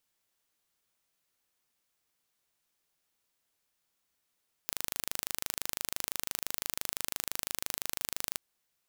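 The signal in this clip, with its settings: pulse train 25.9 per s, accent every 0, -5.5 dBFS 3.67 s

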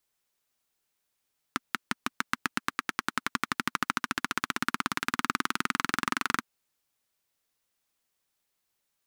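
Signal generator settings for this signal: single-cylinder engine model, changing speed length 4.87 s, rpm 600, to 2800, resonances 250/1300 Hz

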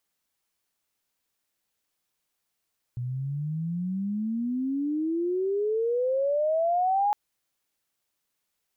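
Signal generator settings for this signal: sweep logarithmic 120 Hz -> 840 Hz -28.5 dBFS -> -20.5 dBFS 4.16 s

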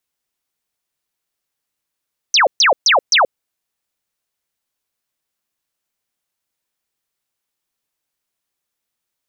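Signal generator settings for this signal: burst of laser zaps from 6.4 kHz, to 470 Hz, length 0.13 s sine, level -8.5 dB, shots 4, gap 0.13 s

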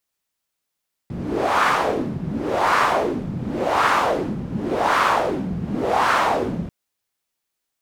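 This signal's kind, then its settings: wind-like swept noise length 5.59 s, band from 160 Hz, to 1.2 kHz, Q 2.4, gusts 5, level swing 10.5 dB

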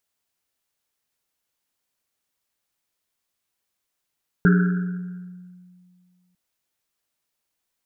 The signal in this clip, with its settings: Risset drum length 1.90 s, pitch 180 Hz, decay 2.19 s, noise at 1.5 kHz, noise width 290 Hz, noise 20%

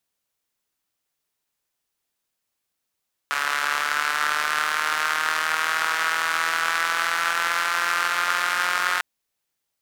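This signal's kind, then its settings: four-cylinder engine model, changing speed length 5.70 s, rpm 4300, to 5400, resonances 1.4 kHz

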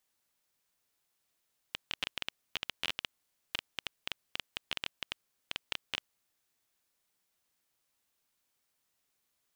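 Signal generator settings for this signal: random clicks 11 per s -15.5 dBFS 4.31 s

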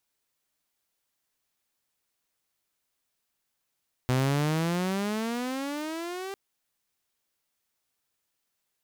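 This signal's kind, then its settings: gliding synth tone saw, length 2.25 s, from 125 Hz, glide +20 st, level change -12 dB, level -19.5 dB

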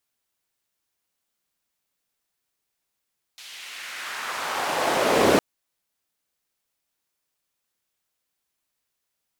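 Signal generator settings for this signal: swept filtered noise white, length 2.01 s bandpass, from 3.4 kHz, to 360 Hz, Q 1.4, exponential, gain ramp +35.5 dB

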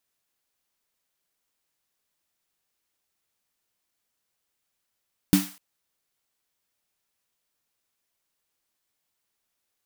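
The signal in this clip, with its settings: snare drum length 0.25 s, tones 190 Hz, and 290 Hz, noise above 670 Hz, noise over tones -9.5 dB, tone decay 0.25 s, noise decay 0.45 s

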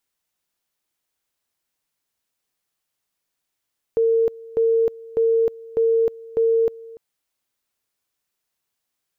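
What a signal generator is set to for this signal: two-level tone 455 Hz -14.5 dBFS, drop 21.5 dB, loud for 0.31 s, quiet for 0.29 s, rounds 5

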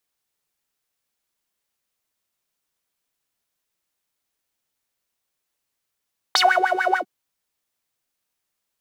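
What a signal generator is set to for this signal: synth patch with filter wobble F#5, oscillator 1 saw, oscillator 2 saw, sub -12 dB, noise -4 dB, filter bandpass, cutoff 380 Hz, Q 8.6, filter envelope 3 oct, filter decay 0.17 s, attack 1.9 ms, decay 0.27 s, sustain -7 dB, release 0.08 s, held 0.62 s, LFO 6.8 Hz, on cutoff 1.1 oct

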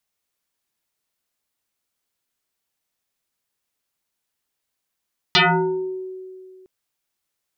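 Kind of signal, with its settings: FM tone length 1.31 s, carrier 374 Hz, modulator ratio 1.45, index 8.8, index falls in 0.75 s exponential, decay 2.27 s, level -10.5 dB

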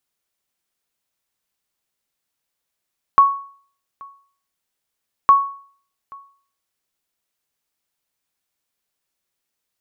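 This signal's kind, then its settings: sonar ping 1.11 kHz, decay 0.49 s, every 2.11 s, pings 2, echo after 0.83 s, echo -27 dB -4 dBFS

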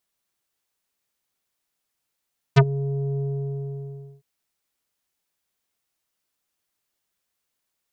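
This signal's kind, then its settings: synth note square C#3 24 dB/octave, low-pass 480 Hz, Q 1.1, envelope 4.5 oct, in 0.06 s, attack 20 ms, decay 0.06 s, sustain -16.5 dB, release 1.03 s, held 0.63 s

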